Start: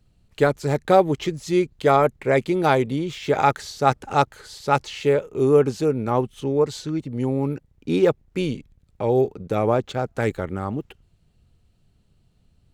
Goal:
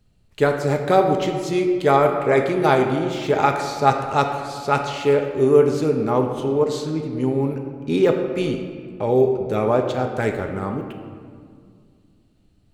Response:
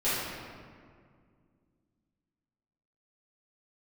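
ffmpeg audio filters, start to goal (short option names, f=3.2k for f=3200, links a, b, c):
-filter_complex "[0:a]asplit=2[a][b];[b]lowshelf=f=120:g=-11[c];[1:a]atrim=start_sample=2205[d];[c][d]afir=irnorm=-1:irlink=0,volume=-13.5dB[e];[a][e]amix=inputs=2:normalize=0,volume=-1dB"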